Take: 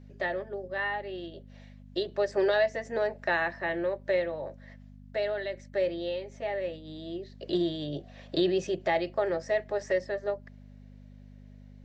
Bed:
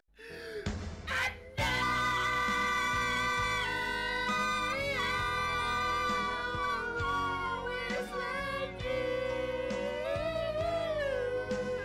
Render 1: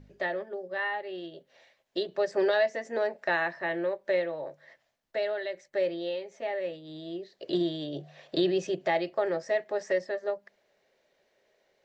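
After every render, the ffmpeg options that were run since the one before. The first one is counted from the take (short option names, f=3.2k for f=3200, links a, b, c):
-af "bandreject=f=50:t=h:w=4,bandreject=f=100:t=h:w=4,bandreject=f=150:t=h:w=4,bandreject=f=200:t=h:w=4,bandreject=f=250:t=h:w=4"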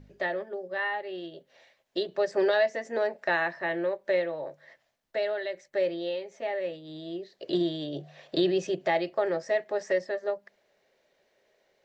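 -af "volume=1dB"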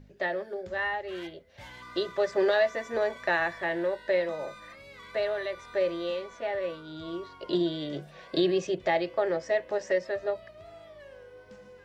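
-filter_complex "[1:a]volume=-16dB[a];[0:a][a]amix=inputs=2:normalize=0"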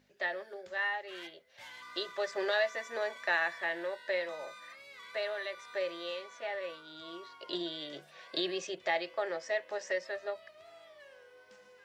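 -af "highpass=f=1.3k:p=1"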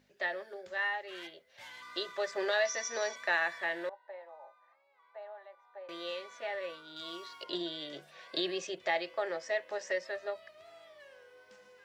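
-filter_complex "[0:a]asettb=1/sr,asplit=3[a][b][c];[a]atrim=end=2.654[d];[b]atrim=start=2.65:end=3.16,asetpts=PTS-STARTPTS,afade=t=in:d=0.004:c=qsin,afade=t=out:st=0.506:d=0.004:c=qsin,lowpass=f=5.8k:t=q:w=12[e];[c]atrim=start=3.156[f];[d][e]acrossfade=d=0.004:c1=hsin:c2=qsin[g];[g][f]acrossfade=d=0.004:c1=qsin:c2=hsin,asettb=1/sr,asplit=3[h][i][j];[h]atrim=end=3.894[k];[i]atrim=start=3.89:end=5.89,asetpts=PTS-STARTPTS,afade=t=in:d=0.004:c=qsin,afade=t=out:st=1.996:d=0.004:c=qsin,bandpass=f=820:t=q:w=5.7[l];[j]atrim=start=5.886[m];[k][l]acrossfade=d=0.004:c1=hsin:c2=qsin[n];[n][m]acrossfade=d=0.004:c1=qsin:c2=hsin,asettb=1/sr,asplit=3[o][p][q];[o]atrim=end=6.964[r];[p]atrim=start=6.96:end=7.44,asetpts=PTS-STARTPTS,afade=t=in:d=0.004:c=qsin,afade=t=out:st=0.476:d=0.004:c=qsin,highshelf=f=2.8k:g=10[s];[q]atrim=start=7.436[t];[r][s]acrossfade=d=0.004:c1=hsin:c2=qsin[u];[u][t]acrossfade=d=0.004:c1=qsin:c2=hsin"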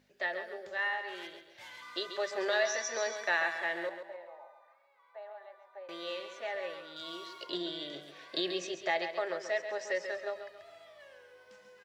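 -af "aecho=1:1:136|272|408|544:0.355|0.128|0.046|0.0166"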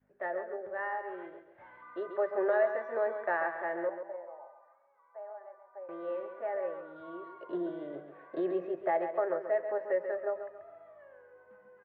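-af "lowpass=f=1.5k:w=0.5412,lowpass=f=1.5k:w=1.3066,adynamicequalizer=threshold=0.00447:dfrequency=470:dqfactor=0.73:tfrequency=470:tqfactor=0.73:attack=5:release=100:ratio=0.375:range=2.5:mode=boostabove:tftype=bell"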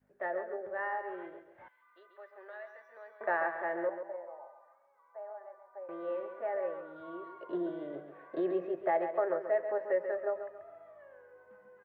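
-filter_complex "[0:a]asettb=1/sr,asplit=3[a][b][c];[a]atrim=end=1.684[d];[b]atrim=start=1.68:end=3.21,asetpts=PTS-STARTPTS,afade=t=in:d=0.004:c=qsin,afade=t=out:st=1.526:d=0.004:c=qsin,aderivative[e];[c]atrim=start=3.206[f];[d][e]acrossfade=d=0.004:c1=hsin:c2=qsin[g];[g][f]acrossfade=d=0.004:c1=qsin:c2=hsin"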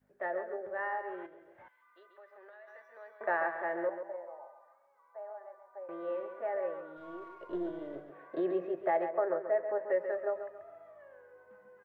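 -filter_complex "[0:a]asettb=1/sr,asplit=3[a][b][c];[a]atrim=end=1.264[d];[b]atrim=start=1.26:end=2.68,asetpts=PTS-STARTPTS,afade=t=in:d=0.004:c=qsin,afade=t=out:st=1.416:d=0.004:c=qsin,acompressor=threshold=-51dB:ratio=4:attack=3.2:release=140:knee=1:detection=peak[e];[c]atrim=start=2.676[f];[d][e]acrossfade=d=0.004:c1=hsin:c2=qsin[g];[g][f]acrossfade=d=0.004:c1=qsin:c2=hsin,asettb=1/sr,asplit=3[h][i][j];[h]atrim=end=6.974[k];[i]atrim=start=6.97:end=8.1,asetpts=PTS-STARTPTS,afade=t=in:d=0.004:c=qsin,afade=t=out:st=1.126:d=0.004:c=qsin,aeval=exprs='if(lt(val(0),0),0.708*val(0),val(0))':c=same[l];[j]atrim=start=8.096[m];[k][l]acrossfade=d=0.004:c1=hsin:c2=qsin[n];[n][m]acrossfade=d=0.004:c1=qsin:c2=hsin,asettb=1/sr,asplit=3[o][p][q];[o]atrim=end=9.094[r];[p]atrim=start=9.09:end=9.9,asetpts=PTS-STARTPTS,afade=t=in:d=0.004:c=qsin,afade=t=out:st=0.806:d=0.004:c=qsin,lowpass=2k[s];[q]atrim=start=9.896[t];[r][s]acrossfade=d=0.004:c1=hsin:c2=qsin[u];[u][t]acrossfade=d=0.004:c1=qsin:c2=hsin"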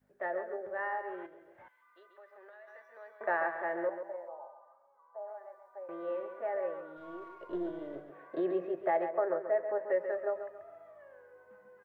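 -filter_complex "[0:a]asettb=1/sr,asplit=3[a][b][c];[a]atrim=end=4.284[d];[b]atrim=start=4.28:end=5.28,asetpts=PTS-STARTPTS,afade=t=in:d=0.004:c=qsin,afade=t=out:st=0.996:d=0.004:c=qsin,highshelf=f=1.6k:t=q:w=1.5:g=-12.5[e];[c]atrim=start=5.276[f];[d][e]acrossfade=d=0.004:c1=hsin:c2=qsin[g];[g][f]acrossfade=d=0.004:c1=qsin:c2=hsin"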